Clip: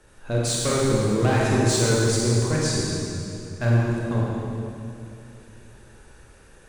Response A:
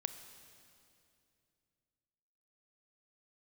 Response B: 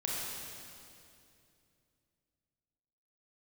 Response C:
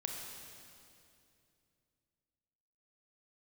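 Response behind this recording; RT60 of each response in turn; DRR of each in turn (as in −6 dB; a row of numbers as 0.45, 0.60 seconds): B; 2.6, 2.6, 2.6 seconds; 9.0, −5.0, 0.5 decibels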